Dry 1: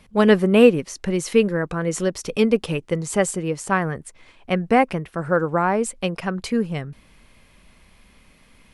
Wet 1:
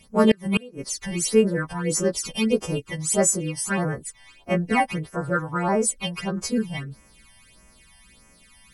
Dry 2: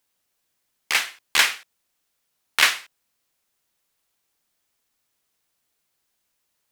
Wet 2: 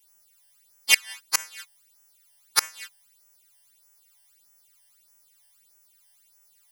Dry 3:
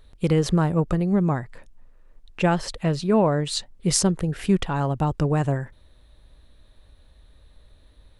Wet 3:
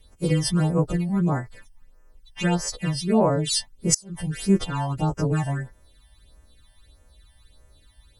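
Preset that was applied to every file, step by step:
frequency quantiser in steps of 2 st; flipped gate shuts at -3 dBFS, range -29 dB; phaser stages 12, 1.6 Hz, lowest notch 400–3900 Hz; match loudness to -24 LUFS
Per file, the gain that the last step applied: -0.5, +4.0, 0.0 dB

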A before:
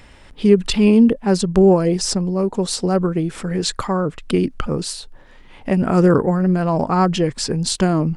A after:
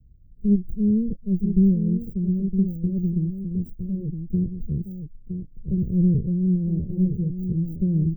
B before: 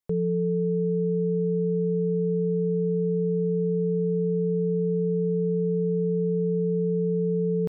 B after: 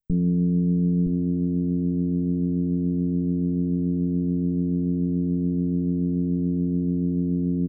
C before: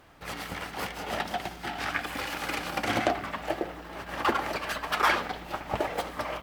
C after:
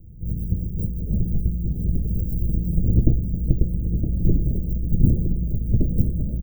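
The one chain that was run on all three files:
minimum comb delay 1.9 ms; dynamic EQ 300 Hz, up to +6 dB, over -30 dBFS, Q 0.74; inverse Chebyshev band-stop 1200–9300 Hz, stop band 80 dB; on a send: echo 0.965 s -8 dB; on the sum: match loudness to -24 LUFS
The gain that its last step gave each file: -3.0, +10.0, +22.0 dB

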